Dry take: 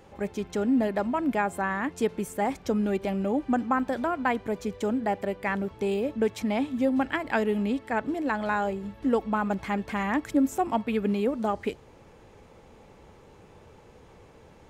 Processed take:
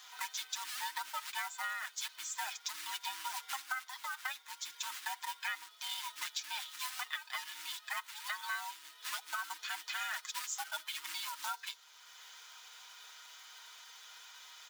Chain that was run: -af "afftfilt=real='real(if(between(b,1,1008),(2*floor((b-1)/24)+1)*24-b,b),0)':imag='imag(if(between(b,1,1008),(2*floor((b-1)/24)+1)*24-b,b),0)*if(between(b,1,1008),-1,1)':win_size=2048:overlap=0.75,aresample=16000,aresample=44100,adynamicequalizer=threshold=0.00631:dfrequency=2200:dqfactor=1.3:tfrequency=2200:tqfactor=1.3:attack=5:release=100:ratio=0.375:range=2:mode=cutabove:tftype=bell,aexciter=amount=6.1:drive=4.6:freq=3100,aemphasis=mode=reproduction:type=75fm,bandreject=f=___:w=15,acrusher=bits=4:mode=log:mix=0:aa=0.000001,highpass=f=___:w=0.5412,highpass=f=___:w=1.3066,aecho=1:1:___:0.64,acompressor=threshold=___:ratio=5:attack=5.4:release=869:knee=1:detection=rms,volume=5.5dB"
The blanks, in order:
2700, 1300, 1300, 6.4, -39dB